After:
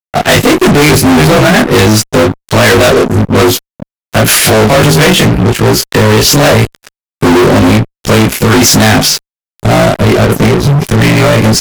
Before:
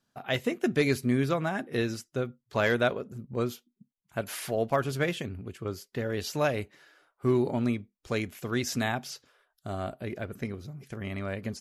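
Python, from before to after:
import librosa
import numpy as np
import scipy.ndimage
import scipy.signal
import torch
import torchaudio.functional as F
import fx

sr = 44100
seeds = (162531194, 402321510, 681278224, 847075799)

y = fx.frame_reverse(x, sr, frame_ms=55.0)
y = fx.rotary(y, sr, hz=5.5)
y = fx.fuzz(y, sr, gain_db=50.0, gate_db=-55.0)
y = y * librosa.db_to_amplitude(9.0)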